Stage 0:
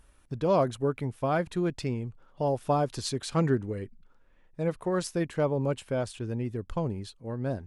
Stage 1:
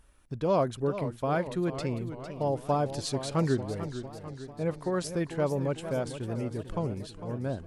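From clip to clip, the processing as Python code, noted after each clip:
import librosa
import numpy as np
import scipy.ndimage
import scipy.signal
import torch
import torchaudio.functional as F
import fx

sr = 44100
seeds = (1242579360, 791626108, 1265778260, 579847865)

y = fx.echo_warbled(x, sr, ms=448, feedback_pct=59, rate_hz=2.8, cents=167, wet_db=-11.0)
y = F.gain(torch.from_numpy(y), -1.5).numpy()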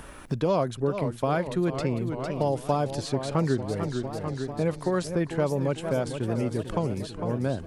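y = fx.band_squash(x, sr, depth_pct=70)
y = F.gain(torch.from_numpy(y), 3.0).numpy()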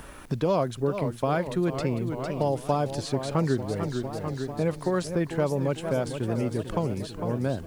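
y = fx.quant_dither(x, sr, seeds[0], bits=10, dither='none')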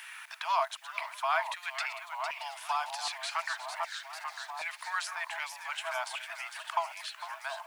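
y = fx.reverse_delay(x, sr, ms=265, wet_db=-12.0)
y = scipy.signal.sosfilt(scipy.signal.cheby1(6, 6, 640.0, 'highpass', fs=sr, output='sos'), y)
y = fx.filter_lfo_highpass(y, sr, shape='saw_down', hz=1.3, low_hz=950.0, high_hz=2000.0, q=1.8)
y = F.gain(torch.from_numpy(y), 4.5).numpy()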